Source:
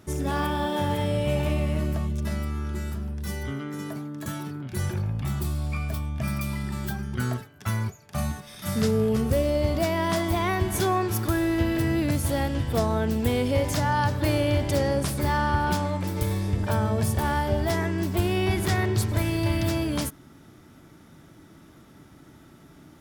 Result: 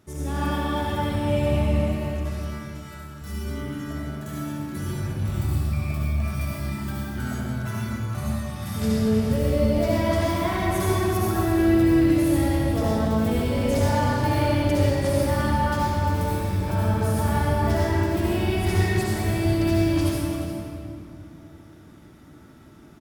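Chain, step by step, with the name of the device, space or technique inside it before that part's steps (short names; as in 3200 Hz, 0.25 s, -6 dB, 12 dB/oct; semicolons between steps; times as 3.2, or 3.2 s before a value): 1.94–3.22 Chebyshev high-pass 1100 Hz, order 2; cave (echo 0.35 s -12 dB; reverb RT60 2.9 s, pre-delay 59 ms, DRR -7 dB); gain -7 dB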